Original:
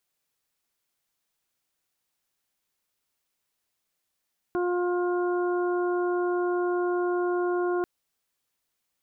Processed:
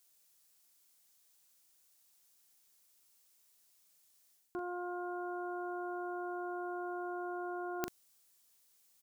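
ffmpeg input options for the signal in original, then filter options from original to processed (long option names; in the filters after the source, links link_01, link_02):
-f lavfi -i "aevalsrc='0.0631*sin(2*PI*355*t)+0.0211*sin(2*PI*710*t)+0.0168*sin(2*PI*1065*t)+0.0141*sin(2*PI*1420*t)':duration=3.29:sample_rate=44100"
-filter_complex "[0:a]bass=frequency=250:gain=-2,treble=frequency=4000:gain=11,areverse,acompressor=threshold=-37dB:ratio=6,areverse,asplit=2[link_01][link_02];[link_02]adelay=41,volume=-7.5dB[link_03];[link_01][link_03]amix=inputs=2:normalize=0"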